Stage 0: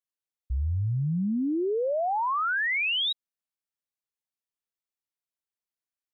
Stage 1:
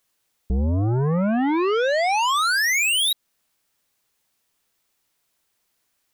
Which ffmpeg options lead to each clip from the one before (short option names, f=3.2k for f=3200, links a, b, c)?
-af "aeval=exprs='0.0668*(cos(1*acos(clip(val(0)/0.0668,-1,1)))-cos(1*PI/2))+0.00133*(cos(4*acos(clip(val(0)/0.0668,-1,1)))-cos(4*PI/2))+0.0168*(cos(5*acos(clip(val(0)/0.0668,-1,1)))-cos(5*PI/2))':c=same,alimiter=level_in=1.5dB:limit=-24dB:level=0:latency=1:release=210,volume=-1.5dB,aeval=exprs='0.0562*sin(PI/2*1.78*val(0)/0.0562)':c=same,volume=6dB"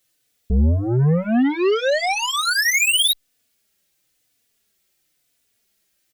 -filter_complex "[0:a]equalizer=f=1k:w=1.8:g=-11.5,asplit=2[a][b];[b]adelay=3.4,afreqshift=-0.99[c];[a][c]amix=inputs=2:normalize=1,volume=6.5dB"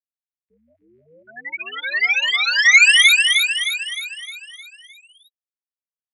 -filter_complex "[0:a]afftfilt=real='re*gte(hypot(re,im),0.251)':imag='im*gte(hypot(re,im),0.251)':win_size=1024:overlap=0.75,highpass=f=2.1k:t=q:w=3.4,asplit=2[a][b];[b]aecho=0:1:308|616|924|1232|1540|1848|2156:0.668|0.348|0.181|0.094|0.0489|0.0254|0.0132[c];[a][c]amix=inputs=2:normalize=0,volume=-1dB"